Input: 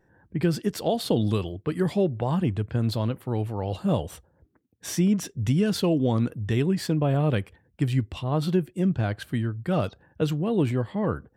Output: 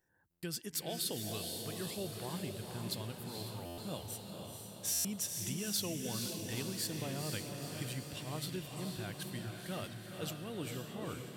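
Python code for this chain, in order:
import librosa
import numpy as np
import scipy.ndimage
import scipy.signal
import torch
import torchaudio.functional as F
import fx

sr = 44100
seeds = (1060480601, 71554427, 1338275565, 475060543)

y = F.preemphasis(torch.from_numpy(x), 0.9).numpy()
y = fx.echo_diffused(y, sr, ms=477, feedback_pct=63, wet_db=-4)
y = fx.buffer_glitch(y, sr, at_s=(0.3, 3.65, 4.92), block=512, repeats=10)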